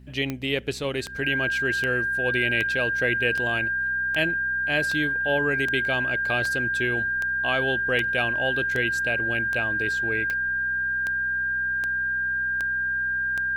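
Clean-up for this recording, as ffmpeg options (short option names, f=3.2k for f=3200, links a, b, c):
-af "adeclick=t=4,bandreject=f=63.4:t=h:w=4,bandreject=f=126.8:t=h:w=4,bandreject=f=190.2:t=h:w=4,bandreject=f=253.6:t=h:w=4,bandreject=f=1.6k:w=30"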